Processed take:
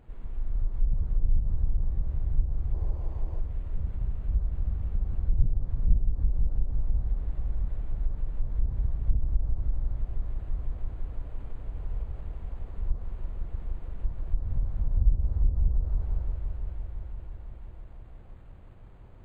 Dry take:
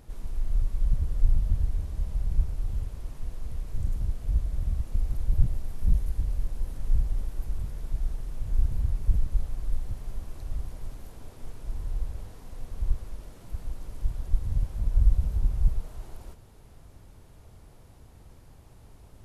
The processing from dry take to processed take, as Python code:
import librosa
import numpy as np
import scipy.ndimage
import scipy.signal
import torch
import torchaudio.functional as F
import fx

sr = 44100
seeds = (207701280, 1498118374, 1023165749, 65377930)

y = fx.echo_heads(x, sr, ms=169, heads='all three', feedback_pct=68, wet_db=-9.5)
y = fx.spec_box(y, sr, start_s=2.73, length_s=0.67, low_hz=320.0, high_hz=1100.0, gain_db=7)
y = fx.env_lowpass_down(y, sr, base_hz=650.0, full_db=-15.0)
y = np.interp(np.arange(len(y)), np.arange(len(y))[::8], y[::8])
y = F.gain(torch.from_numpy(y), -3.0).numpy()